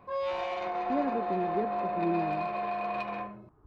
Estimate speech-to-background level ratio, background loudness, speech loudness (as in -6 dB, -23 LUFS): -1.5 dB, -33.0 LUFS, -34.5 LUFS